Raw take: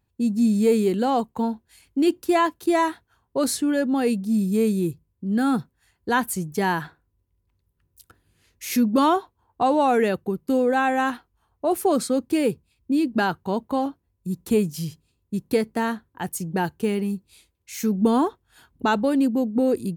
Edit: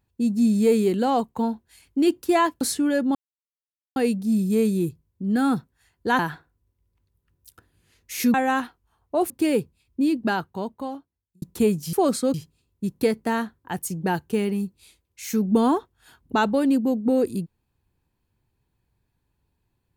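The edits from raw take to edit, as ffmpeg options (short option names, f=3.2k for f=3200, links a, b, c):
-filter_complex "[0:a]asplit=9[a][b][c][d][e][f][g][h][i];[a]atrim=end=2.612[j];[b]atrim=start=3.438:end=3.98,asetpts=PTS-STARTPTS,afade=t=out:st=0.538:d=0.004:c=hsin,apad=pad_dur=0.81[k];[c]atrim=start=3.98:end=6.212,asetpts=PTS-STARTPTS,afade=t=in:d=0.004:c=hsin[l];[d]atrim=start=6.708:end=8.862[m];[e]atrim=start=10.838:end=11.802[n];[f]atrim=start=12.208:end=14.33,asetpts=PTS-STARTPTS,afade=t=out:st=0.732:d=1.39[o];[g]atrim=start=14.33:end=14.842,asetpts=PTS-STARTPTS,afade=t=in:d=0.004:c=hsin[p];[h]atrim=start=11.798:end=12.212[q];[i]atrim=start=14.838[r];[k][l]concat=n=2:v=0:a=1[s];[j][s]acrossfade=d=0.004:c1=hsin:c2=hsin[t];[t][m]acrossfade=d=0.004:c1=hsin:c2=hsin[u];[u][n]acrossfade=d=0.004:c1=hsin:c2=hsin[v];[o][p]concat=n=2:v=0:a=1[w];[v][w]acrossfade=d=0.004:c1=hsin:c2=hsin[x];[x][q]acrossfade=d=0.004:c1=hsin:c2=hsin[y];[y][r]acrossfade=d=0.004:c1=hsin:c2=hsin"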